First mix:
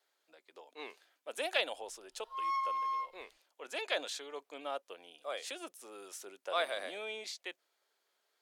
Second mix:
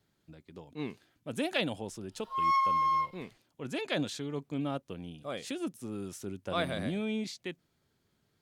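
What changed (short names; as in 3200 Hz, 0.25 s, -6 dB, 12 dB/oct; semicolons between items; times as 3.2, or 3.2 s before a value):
speech: remove HPF 500 Hz 24 dB/oct; background +7.5 dB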